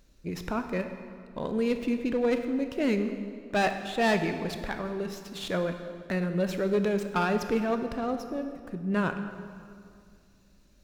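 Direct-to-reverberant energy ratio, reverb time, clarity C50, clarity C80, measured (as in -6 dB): 7.0 dB, 2.3 s, 8.0 dB, 9.5 dB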